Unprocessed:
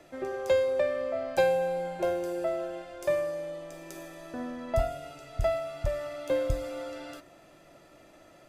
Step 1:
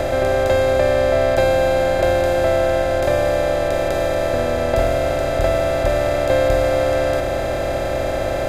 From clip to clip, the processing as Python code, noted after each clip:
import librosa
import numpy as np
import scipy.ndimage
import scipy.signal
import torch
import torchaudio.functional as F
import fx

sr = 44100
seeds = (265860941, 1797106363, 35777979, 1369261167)

y = fx.bin_compress(x, sr, power=0.2)
y = F.gain(torch.from_numpy(y), 4.0).numpy()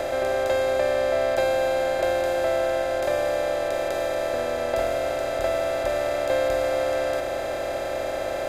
y = fx.bass_treble(x, sr, bass_db=-12, treble_db=1)
y = F.gain(torch.from_numpy(y), -5.5).numpy()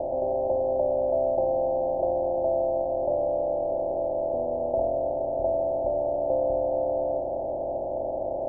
y = scipy.signal.sosfilt(scipy.signal.cheby1(6, 3, 930.0, 'lowpass', fs=sr, output='sos'), x)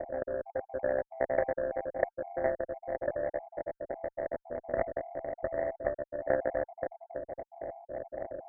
y = fx.spec_dropout(x, sr, seeds[0], share_pct=49)
y = fx.notch(y, sr, hz=880.0, q=12.0)
y = fx.cheby_harmonics(y, sr, harmonics=(3,), levels_db=(-12,), full_scale_db=-14.0)
y = F.gain(torch.from_numpy(y), 2.0).numpy()